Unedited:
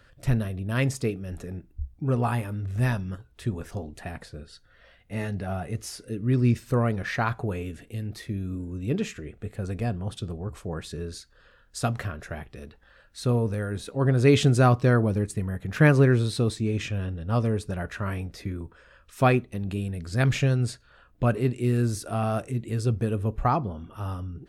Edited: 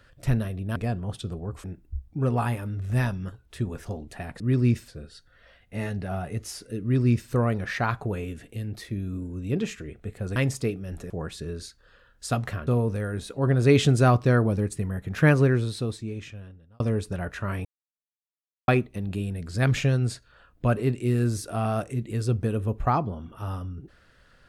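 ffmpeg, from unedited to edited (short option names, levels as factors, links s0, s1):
-filter_complex "[0:a]asplit=11[s0][s1][s2][s3][s4][s5][s6][s7][s8][s9][s10];[s0]atrim=end=0.762[s11];[s1]atrim=start=9.738:end=10.622[s12];[s2]atrim=start=1.498:end=4.262[s13];[s3]atrim=start=6.198:end=6.682[s14];[s4]atrim=start=4.258:end=9.742[s15];[s5]atrim=start=0.758:end=1.502[s16];[s6]atrim=start=10.618:end=12.192[s17];[s7]atrim=start=13.248:end=17.38,asetpts=PTS-STARTPTS,afade=t=out:st=2.502:d=1.63[s18];[s8]atrim=start=17.38:end=18.23,asetpts=PTS-STARTPTS,afade=t=in:d=0.004:c=hsin,afade=t=out:st=0.846:d=0.004:c=hsin[s19];[s9]atrim=start=18.23:end=19.26,asetpts=PTS-STARTPTS,volume=0[s20];[s10]atrim=start=19.26,asetpts=PTS-STARTPTS,afade=t=in:d=0.004:c=hsin[s21];[s11][s12]acrossfade=d=0.004:c1=hsin:c2=hsin[s22];[s22][s13]acrossfade=d=0.004:c1=hsin:c2=hsin[s23];[s23][s14]acrossfade=d=0.004:c1=hsin:c2=hsin[s24];[s24][s15]acrossfade=d=0.004:c1=hsin:c2=hsin[s25];[s25][s16]acrossfade=d=0.004:c1=hsin:c2=hsin[s26];[s26][s17]acrossfade=d=0.004:c1=hsin:c2=hsin[s27];[s18][s19][s20][s21]concat=n=4:v=0:a=1[s28];[s27][s28]acrossfade=d=0.004:c1=hsin:c2=hsin"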